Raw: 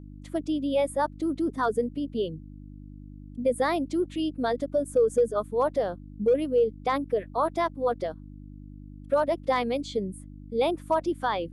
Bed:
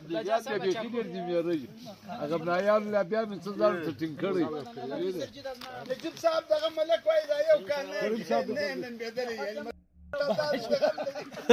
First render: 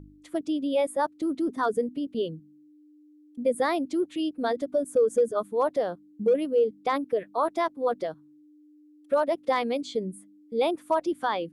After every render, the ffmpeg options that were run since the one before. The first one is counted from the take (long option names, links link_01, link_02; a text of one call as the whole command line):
ffmpeg -i in.wav -af "bandreject=frequency=50:width_type=h:width=4,bandreject=frequency=100:width_type=h:width=4,bandreject=frequency=150:width_type=h:width=4,bandreject=frequency=200:width_type=h:width=4,bandreject=frequency=250:width_type=h:width=4" out.wav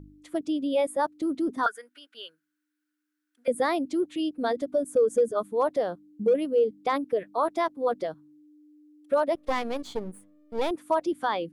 ffmpeg -i in.wav -filter_complex "[0:a]asettb=1/sr,asplit=3[link_01][link_02][link_03];[link_01]atrim=end=1.664[link_04];[link_02]atrim=start=1.66:end=3.48,asetpts=PTS-STARTPTS,afade=type=in:duration=0.004:curve=qsin,afade=type=out:start_time=1.816:duration=0.004:curve=qsin,highpass=frequency=1500:width_type=q:width=10[link_05];[link_03]atrim=start=3.476[link_06];[link_04][link_05]acrossfade=duration=0.004:curve1=hsin:curve2=qsin[link_07];[link_07][link_06]acrossfade=duration=0.004:curve1=qsin:curve2=hsin,asettb=1/sr,asplit=3[link_08][link_09][link_10];[link_08]atrim=end=9.354[link_11];[link_09]atrim=start=9.35:end=10.71,asetpts=PTS-STARTPTS,afade=type=in:duration=0.004:curve=qsin,afade=type=out:start_time=1.356:duration=0.004:curve=qsin,aeval=exprs='if(lt(val(0),0),0.251*val(0),val(0))':channel_layout=same[link_12];[link_10]atrim=start=10.706[link_13];[link_11][link_12]acrossfade=duration=0.004:curve1=hsin:curve2=qsin[link_14];[link_14][link_13]acrossfade=duration=0.004:curve1=qsin:curve2=hsin" out.wav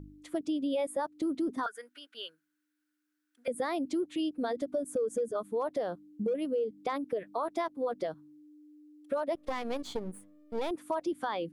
ffmpeg -i in.wav -af "alimiter=limit=-20.5dB:level=0:latency=1:release=162,acompressor=threshold=-31dB:ratio=2" out.wav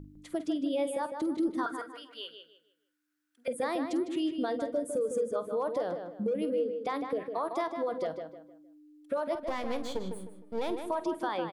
ffmpeg -i in.wav -filter_complex "[0:a]asplit=2[link_01][link_02];[link_02]adelay=48,volume=-14dB[link_03];[link_01][link_03]amix=inputs=2:normalize=0,asplit=2[link_04][link_05];[link_05]adelay=154,lowpass=frequency=3400:poles=1,volume=-6.5dB,asplit=2[link_06][link_07];[link_07]adelay=154,lowpass=frequency=3400:poles=1,volume=0.34,asplit=2[link_08][link_09];[link_09]adelay=154,lowpass=frequency=3400:poles=1,volume=0.34,asplit=2[link_10][link_11];[link_11]adelay=154,lowpass=frequency=3400:poles=1,volume=0.34[link_12];[link_04][link_06][link_08][link_10][link_12]amix=inputs=5:normalize=0" out.wav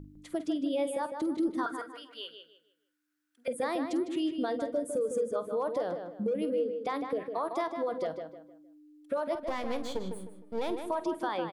ffmpeg -i in.wav -af anull out.wav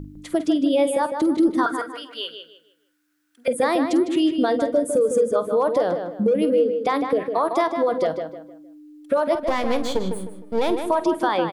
ffmpeg -i in.wav -af "volume=11.5dB" out.wav